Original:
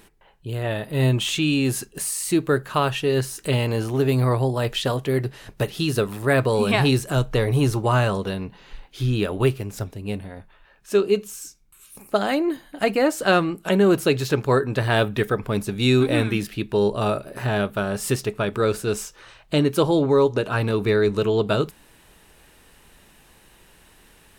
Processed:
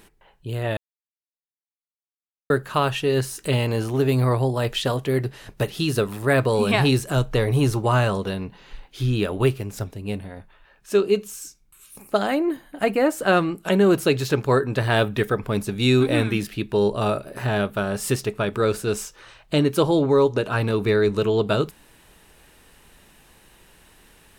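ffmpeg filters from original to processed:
-filter_complex "[0:a]asettb=1/sr,asplit=3[s0][s1][s2];[s0]atrim=end=12.274[s3];[s1]atrim=start=12.27:end=13.37,asetpts=PTS-STARTPTS,afade=t=in:d=0.004:c=qsin,afade=t=out:st=1.096:d=0.004:c=qsin,equalizer=f=4700:t=o:w=1.3:g=-6.5[s4];[s2]atrim=start=13.366[s5];[s3][s4]acrossfade=d=0.004:c1=hsin:c2=qsin[s6];[s6][s5]acrossfade=d=0.004:c1=qsin:c2=hsin,asplit=3[s7][s8][s9];[s7]atrim=end=0.77,asetpts=PTS-STARTPTS,afade=t=out:st=0.766:d=0.004:c=hsin[s10];[s8]atrim=start=0.77:end=2.5,asetpts=PTS-STARTPTS,volume=0[s11];[s9]atrim=start=2.5,asetpts=PTS-STARTPTS,afade=t=in:d=0.004:c=hsin[s12];[s10][s11][s12]concat=n=3:v=0:a=1"

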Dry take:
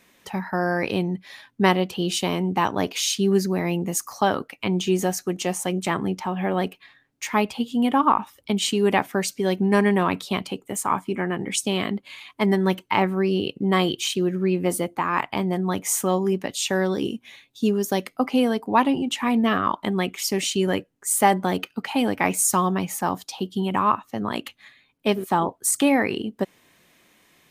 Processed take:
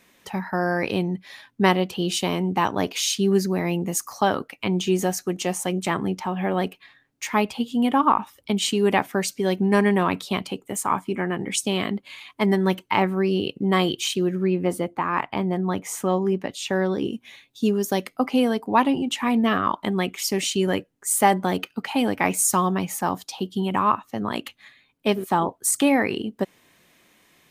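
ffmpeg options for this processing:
-filter_complex "[0:a]asettb=1/sr,asplit=3[s0][s1][s2];[s0]atrim=end=14.474[s3];[s1]atrim=start=14.47:end=17.13,asetpts=PTS-STARTPTS,afade=t=in:d=0.004:c=qsin,afade=t=out:st=2.656:d=0.004:c=qsin,highshelf=f=4100:g=-10.5[s4];[s2]atrim=start=17.126[s5];[s3][s4]acrossfade=d=0.004:c1=hsin:c2=qsin[s6];[s6][s5]acrossfade=d=0.004:c1=qsin:c2=hsin"

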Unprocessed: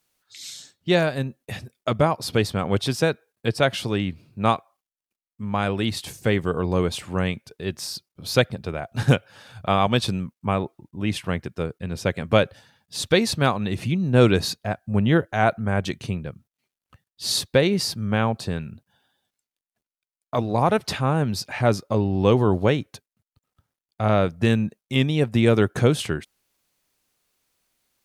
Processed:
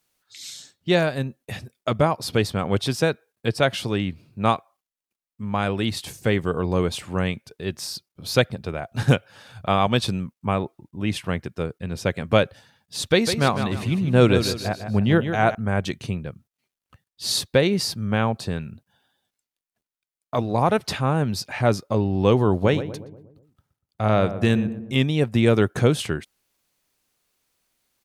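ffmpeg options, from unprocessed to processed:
-filter_complex "[0:a]asettb=1/sr,asplit=3[s0][s1][s2];[s0]atrim=end=13.054[s3];[s1]atrim=start=13.05:end=15.55,asetpts=PTS-STARTPTS,afade=t=in:d=0.004:c=qsin,afade=t=out:st=2.496:d=0.004:c=qsin,aecho=1:1:152|304|456|608:0.355|0.128|0.046|0.0166,atrim=end_sample=110250[s4];[s2]atrim=start=15.546[s5];[s3][s4]acrossfade=d=0.004:c1=hsin:c2=qsin[s6];[s6][s5]acrossfade=d=0.004:c1=qsin:c2=hsin,asplit=3[s7][s8][s9];[s7]afade=t=out:st=22.62:d=0.02[s10];[s8]asplit=2[s11][s12];[s12]adelay=120,lowpass=f=1100:p=1,volume=0.299,asplit=2[s13][s14];[s14]adelay=120,lowpass=f=1100:p=1,volume=0.54,asplit=2[s15][s16];[s16]adelay=120,lowpass=f=1100:p=1,volume=0.54,asplit=2[s17][s18];[s18]adelay=120,lowpass=f=1100:p=1,volume=0.54,asplit=2[s19][s20];[s20]adelay=120,lowpass=f=1100:p=1,volume=0.54,asplit=2[s21][s22];[s22]adelay=120,lowpass=f=1100:p=1,volume=0.54[s23];[s11][s13][s15][s17][s19][s21][s23]amix=inputs=7:normalize=0,afade=t=in:st=22.62:d=0.02,afade=t=out:st=24.94:d=0.02[s24];[s9]afade=t=in:st=24.94:d=0.02[s25];[s10][s24][s25]amix=inputs=3:normalize=0"

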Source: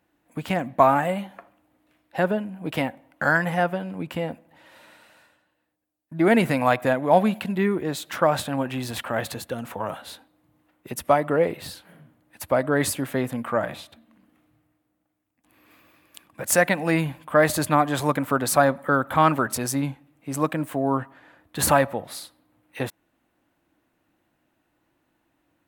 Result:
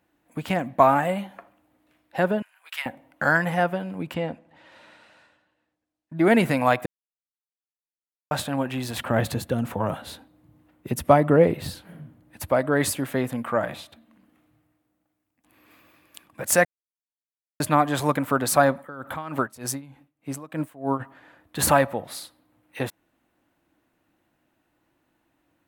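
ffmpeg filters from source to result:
-filter_complex "[0:a]asettb=1/sr,asplit=3[s0][s1][s2];[s0]atrim=end=2.424[s3];[s1]atrim=start=2.42:end=2.86,asetpts=PTS-STARTPTS,afade=t=in:d=0.004:c=qsin,afade=t=out:st=0.436:d=0.004:c=qsin,highpass=f=1300:w=0.5412,highpass=f=1300:w=1.3066[s4];[s2]atrim=start=2.856[s5];[s3][s4]acrossfade=d=0.004:c1=hsin:c2=qsin[s6];[s6][s5]acrossfade=d=0.004:c1=qsin:c2=hsin,asettb=1/sr,asplit=3[s7][s8][s9];[s7]atrim=end=4.144[s10];[s8]atrim=start=4.14:end=6.18,asetpts=PTS-STARTPTS,afade=t=in:d=0.004:c=qsin,afade=t=out:st=2.036:d=0.004:c=qsin,lowpass=6100[s11];[s9]atrim=start=6.176[s12];[s10][s11]acrossfade=d=0.004:c1=hsin:c2=qsin[s13];[s13][s12]acrossfade=d=0.004:c1=qsin:c2=hsin,asettb=1/sr,asplit=3[s14][s15][s16];[s14]atrim=end=8.994[s17];[s15]atrim=start=8.99:end=12.5,asetpts=PTS-STARTPTS,afade=t=in:d=0.004:c=qsin,afade=t=out:st=3.506:d=0.004:c=qsin,lowshelf=f=330:g=11.5[s18];[s16]atrim=start=12.496[s19];[s17][s18]acrossfade=d=0.004:c1=hsin:c2=qsin[s20];[s20][s19]acrossfade=d=0.004:c1=qsin:c2=hsin,asplit=3[s21][s22][s23];[s21]afade=t=out:st=18.8:d=0.02[s24];[s22]aeval=exprs='val(0)*pow(10,-20*(0.5-0.5*cos(2*PI*3.3*n/s))/20)':c=same,afade=t=in:st=18.8:d=0.02,afade=t=out:st=20.99:d=0.02[s25];[s23]afade=t=in:st=20.99:d=0.02[s26];[s24][s25][s26]amix=inputs=3:normalize=0,asplit=5[s27][s28][s29][s30][s31];[s27]atrim=end=6.86,asetpts=PTS-STARTPTS,afade=t=out:st=6.856:d=0.004:c=hsin[s32];[s28]atrim=start=6.86:end=8.31,asetpts=PTS-STARTPTS,volume=0[s33];[s29]atrim=start=8.31:end=16.65,asetpts=PTS-STARTPTS,afade=t=in:d=0.004:c=hsin,afade=t=out:st=8.336:d=0.004:c=hsin[s34];[s30]atrim=start=16.65:end=17.6,asetpts=PTS-STARTPTS,volume=0[s35];[s31]atrim=start=17.6,asetpts=PTS-STARTPTS,afade=t=in:d=0.004:c=hsin[s36];[s32][s33][s34][s35][s36]concat=n=5:v=0:a=1"

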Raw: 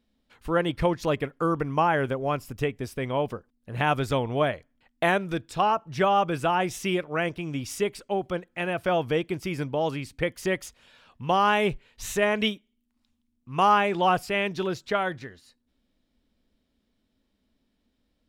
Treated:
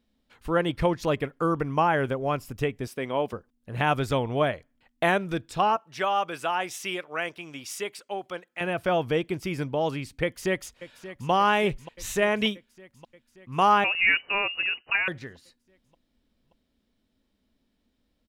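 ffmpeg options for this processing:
-filter_complex "[0:a]asettb=1/sr,asplit=3[s0][s1][s2];[s0]atrim=end=2.874[s3];[s1]atrim=start=2.87:end=3.33,asetpts=PTS-STARTPTS,afade=t=in:d=0.004:c=qsin,afade=t=out:st=0.456:d=0.004:c=qsin,highpass=200[s4];[s2]atrim=start=3.326[s5];[s3][s4]acrossfade=d=0.004:c1=hsin:c2=qsin[s6];[s6][s5]acrossfade=d=0.004:c1=qsin:c2=hsin,asettb=1/sr,asplit=3[s7][s8][s9];[s7]atrim=end=5.764[s10];[s8]atrim=start=5.76:end=8.61,asetpts=PTS-STARTPTS,afade=t=in:d=0.004:c=qsin,afade=t=out:st=2.846:d=0.004:c=qsin,highpass=f=860:p=1[s11];[s9]atrim=start=8.606[s12];[s10][s11]acrossfade=d=0.004:c1=hsin:c2=qsin[s13];[s13][s12]acrossfade=d=0.004:c1=qsin:c2=hsin,asplit=2[s14][s15];[s15]afade=t=in:st=10.23:d=0.01,afade=t=out:st=11.3:d=0.01,aecho=0:1:580|1160|1740|2320|2900|3480|4060|4640|5220:0.188365|0.131855|0.0922988|0.0646092|0.0452264|0.0316585|0.0221609|0.0155127|0.0108589[s16];[s14][s16]amix=inputs=2:normalize=0,asettb=1/sr,asplit=3[s17][s18][s19];[s17]atrim=end=13.844[s20];[s18]atrim=start=13.84:end=15.08,asetpts=PTS-STARTPTS,afade=t=in:d=0.004:c=qsin,afade=t=out:st=1.236:d=0.004:c=qsin,lowpass=f=2600:t=q:w=0.5098,lowpass=f=2600:t=q:w=0.6013,lowpass=f=2600:t=q:w=0.9,lowpass=f=2600:t=q:w=2.563,afreqshift=-3000[s21];[s19]atrim=start=15.076[s22];[s20][s21]acrossfade=d=0.004:c1=hsin:c2=qsin[s23];[s23][s22]acrossfade=d=0.004:c1=qsin:c2=hsin"

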